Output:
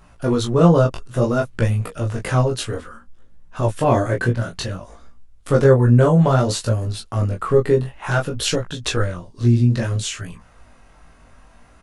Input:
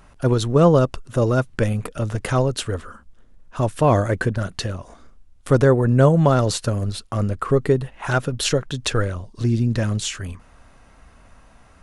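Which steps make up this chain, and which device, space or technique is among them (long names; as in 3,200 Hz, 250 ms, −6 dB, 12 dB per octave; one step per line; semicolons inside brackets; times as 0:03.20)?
double-tracked vocal (double-tracking delay 17 ms −4 dB; chorus effect 0.58 Hz, delay 18 ms, depth 6.8 ms)
level +2 dB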